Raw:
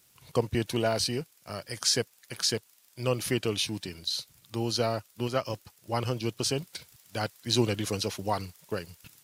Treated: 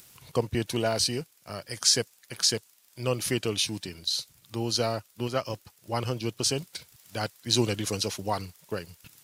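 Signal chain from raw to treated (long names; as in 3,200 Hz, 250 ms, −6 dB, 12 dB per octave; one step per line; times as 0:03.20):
upward compression, threshold −45 dBFS
dynamic equaliser 7,200 Hz, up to +5 dB, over −42 dBFS, Q 0.71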